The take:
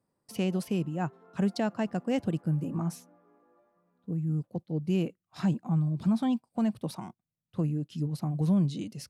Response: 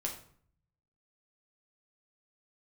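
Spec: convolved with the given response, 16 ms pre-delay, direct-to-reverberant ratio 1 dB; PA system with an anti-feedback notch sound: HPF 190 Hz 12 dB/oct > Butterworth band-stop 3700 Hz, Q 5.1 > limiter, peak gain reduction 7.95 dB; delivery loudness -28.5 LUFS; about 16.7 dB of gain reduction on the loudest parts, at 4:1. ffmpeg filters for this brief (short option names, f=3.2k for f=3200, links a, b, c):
-filter_complex "[0:a]acompressor=threshold=-43dB:ratio=4,asplit=2[a][b];[1:a]atrim=start_sample=2205,adelay=16[c];[b][c]afir=irnorm=-1:irlink=0,volume=-2.5dB[d];[a][d]amix=inputs=2:normalize=0,highpass=190,asuperstop=centerf=3700:order=8:qfactor=5.1,volume=19dB,alimiter=limit=-18.5dB:level=0:latency=1"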